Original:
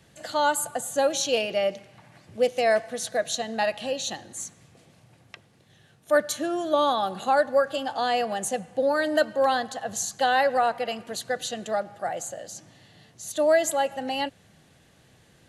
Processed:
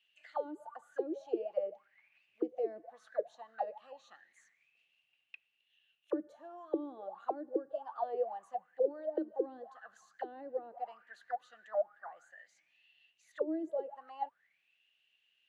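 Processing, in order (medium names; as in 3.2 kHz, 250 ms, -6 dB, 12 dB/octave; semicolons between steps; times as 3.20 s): auto-wah 320–2900 Hz, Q 16, down, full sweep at -18.5 dBFS; trim +1 dB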